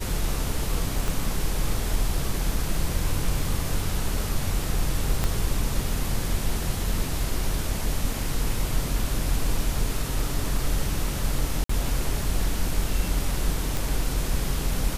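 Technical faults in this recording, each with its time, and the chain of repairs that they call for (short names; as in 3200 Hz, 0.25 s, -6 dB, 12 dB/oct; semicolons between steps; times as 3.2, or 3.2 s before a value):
1.08 pop
5.24 pop -10 dBFS
11.64–11.69 gap 54 ms
13.77 pop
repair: de-click; interpolate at 11.64, 54 ms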